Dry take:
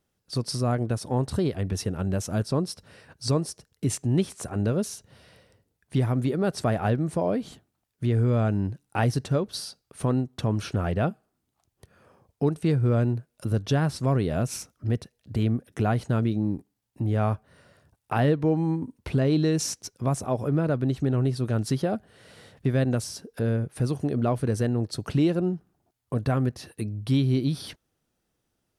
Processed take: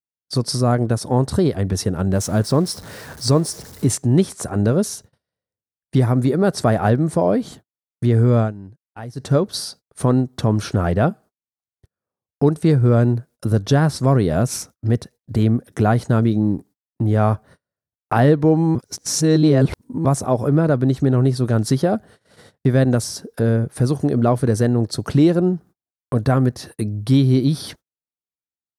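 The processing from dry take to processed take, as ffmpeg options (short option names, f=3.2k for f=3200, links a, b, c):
-filter_complex "[0:a]asettb=1/sr,asplit=3[a][b][c];[a]atrim=end=2.154[d];[b]atrim=start=2.15:end=3.91,asetpts=PTS-STARTPTS,afade=t=in:d=0.004:c=qsin,afade=t=out:st=1.756:d=0.004:c=qsin,aeval=exprs='val(0)+0.5*0.00841*sgn(val(0))':c=same[e];[c]atrim=start=3.906[f];[d][e]acrossfade=d=0.004:c1=hsin:c2=qsin[g];[g][f]acrossfade=d=0.004:c1=qsin:c2=hsin,asettb=1/sr,asplit=3[h][i][j];[h]atrim=end=6.024[k];[i]atrim=start=6.02:end=6.45,asetpts=PTS-STARTPTS,afade=t=in:d=0.004:c=qsin,afade=t=out:st=0.426:d=0.004:c=qsin,bandreject=f=3.1k:w=10[l];[j]atrim=start=6.446[m];[k][l]acrossfade=d=0.004:c1=hsin:c2=qsin[n];[n][m]acrossfade=d=0.004:c1=qsin:c2=hsin,asplit=5[o][p][q][r][s];[o]atrim=end=8.53,asetpts=PTS-STARTPTS,afade=t=out:st=8.39:d=0.14:silence=0.133352[t];[p]atrim=start=8.53:end=9.15,asetpts=PTS-STARTPTS,volume=-17.5dB[u];[q]atrim=start=9.15:end=18.752,asetpts=PTS-STARTPTS,afade=t=in:d=0.14:silence=0.133352[v];[r]atrim=start=18.748:end=20.052,asetpts=PTS-STARTPTS,areverse[w];[s]atrim=start=20.048[x];[t][u][v]concat=n=3:v=0:a=1[y];[y][w]acrossfade=d=0.004:c1=hsin:c2=hsin[z];[z][x]acrossfade=d=0.004:c1=hsin:c2=hsin,highpass=f=62:p=1,agate=range=-39dB:threshold=-49dB:ratio=16:detection=peak,equalizer=f=2.7k:w=2.4:g=-7.5,volume=8.5dB"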